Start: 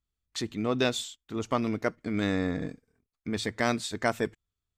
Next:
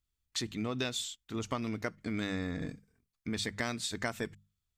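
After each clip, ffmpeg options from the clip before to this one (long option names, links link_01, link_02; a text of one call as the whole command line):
ffmpeg -i in.wav -af "equalizer=frequency=510:width_type=o:width=2.9:gain=-7,bandreject=frequency=50:width_type=h:width=6,bandreject=frequency=100:width_type=h:width=6,bandreject=frequency=150:width_type=h:width=6,bandreject=frequency=200:width_type=h:width=6,acompressor=threshold=-33dB:ratio=5,volume=2.5dB" out.wav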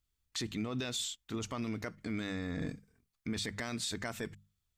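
ffmpeg -i in.wav -af "alimiter=level_in=5dB:limit=-24dB:level=0:latency=1:release=22,volume=-5dB,volume=2dB" out.wav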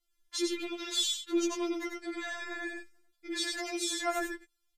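ffmpeg -i in.wav -filter_complex "[0:a]asplit=2[link_01][link_02];[link_02]aecho=0:1:94:0.668[link_03];[link_01][link_03]amix=inputs=2:normalize=0,aresample=32000,aresample=44100,afftfilt=real='re*4*eq(mod(b,16),0)':imag='im*4*eq(mod(b,16),0)':win_size=2048:overlap=0.75,volume=6dB" out.wav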